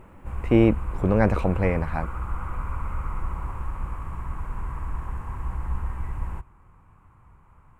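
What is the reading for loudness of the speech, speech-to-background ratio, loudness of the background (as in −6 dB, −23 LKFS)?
−23.0 LKFS, 11.0 dB, −34.0 LKFS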